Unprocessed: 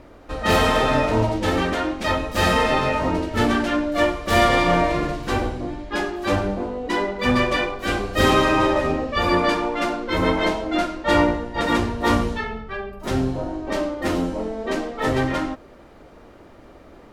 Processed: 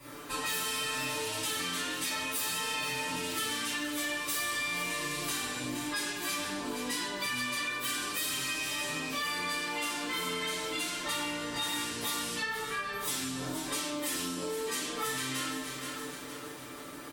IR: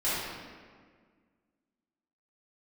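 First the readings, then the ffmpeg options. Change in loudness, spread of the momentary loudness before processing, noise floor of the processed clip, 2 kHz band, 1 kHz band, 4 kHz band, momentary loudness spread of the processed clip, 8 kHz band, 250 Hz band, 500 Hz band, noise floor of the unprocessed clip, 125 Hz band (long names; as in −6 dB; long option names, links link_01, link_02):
−11.0 dB, 9 LU, −44 dBFS, −9.0 dB, −15.0 dB, −4.5 dB, 4 LU, +4.0 dB, −16.5 dB, −19.0 dB, −46 dBFS, −20.5 dB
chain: -filter_complex "[0:a]equalizer=frequency=100:width_type=o:width=0.67:gain=3,equalizer=frequency=630:width_type=o:width=0.67:gain=-11,equalizer=frequency=10000:width_type=o:width=0.67:gain=8,acrossover=split=170|2100[link_01][link_02][link_03];[link_01]acompressor=threshold=-36dB:ratio=4[link_04];[link_02]acompressor=threshold=-35dB:ratio=4[link_05];[link_03]acompressor=threshold=-31dB:ratio=4[link_06];[link_04][link_05][link_06]amix=inputs=3:normalize=0,highpass=53,aemphasis=mode=production:type=bsi,aecho=1:1:6.8:0.7,aecho=1:1:467|934|1401|1868:0.2|0.0938|0.0441|0.0207[link_07];[1:a]atrim=start_sample=2205,afade=type=out:start_time=0.29:duration=0.01,atrim=end_sample=13230,asetrate=70560,aresample=44100[link_08];[link_07][link_08]afir=irnorm=-1:irlink=0,asoftclip=type=tanh:threshold=-14.5dB,acompressor=threshold=-30dB:ratio=6,volume=-2dB"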